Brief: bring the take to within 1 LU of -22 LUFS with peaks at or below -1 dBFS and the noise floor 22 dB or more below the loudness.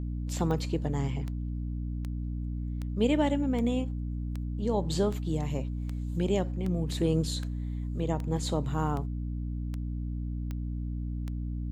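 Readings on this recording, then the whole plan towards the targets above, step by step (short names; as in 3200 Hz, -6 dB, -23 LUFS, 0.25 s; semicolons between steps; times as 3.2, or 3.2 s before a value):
clicks 15; hum 60 Hz; harmonics up to 300 Hz; hum level -31 dBFS; loudness -31.5 LUFS; peak -14.0 dBFS; loudness target -22.0 LUFS
-> de-click; de-hum 60 Hz, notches 5; gain +9.5 dB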